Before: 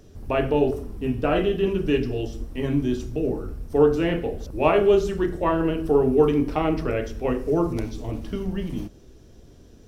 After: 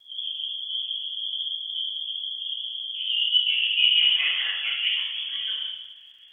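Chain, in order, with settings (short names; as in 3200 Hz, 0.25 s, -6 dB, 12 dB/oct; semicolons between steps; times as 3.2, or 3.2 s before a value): low-pass sweep 100 Hz -> 1500 Hz, 4.11–6.5; granular stretch 0.64×, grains 0.126 s; inverted band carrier 3300 Hz; vibrato 6.6 Hz 41 cents; plate-style reverb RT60 0.95 s, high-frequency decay 1×, DRR -5 dB; crackle 290/s -50 dBFS; gain -8 dB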